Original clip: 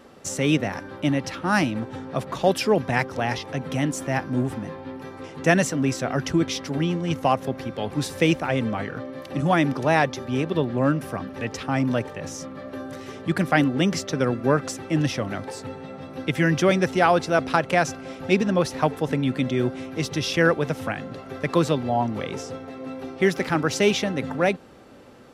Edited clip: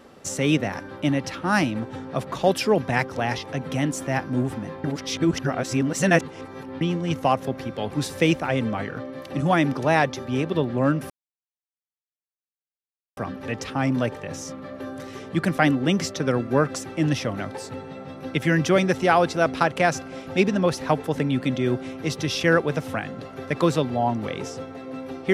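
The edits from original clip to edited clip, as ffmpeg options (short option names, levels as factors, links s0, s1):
-filter_complex "[0:a]asplit=4[s0][s1][s2][s3];[s0]atrim=end=4.842[s4];[s1]atrim=start=4.838:end=6.812,asetpts=PTS-STARTPTS,areverse[s5];[s2]atrim=start=6.808:end=11.1,asetpts=PTS-STARTPTS,afade=t=out:st=4.288:d=0.004:c=hsin,apad=pad_dur=2.07[s6];[s3]atrim=start=11.1,asetpts=PTS-STARTPTS,afade=t=in:d=0.004:c=hsin[s7];[s4][s5]acrossfade=d=0.004:c1=hsin:c2=hsin[s8];[s6][s7]concat=n=2:v=0:a=1[s9];[s8][s9]acrossfade=d=0.004:c1=hsin:c2=hsin"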